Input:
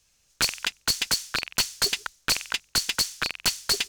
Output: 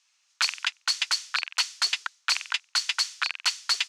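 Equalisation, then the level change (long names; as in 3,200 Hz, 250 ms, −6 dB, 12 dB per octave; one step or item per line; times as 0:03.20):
high-pass filter 930 Hz 24 dB per octave
high-frequency loss of the air 83 metres
notch filter 1,600 Hz, Q 22
+2.5 dB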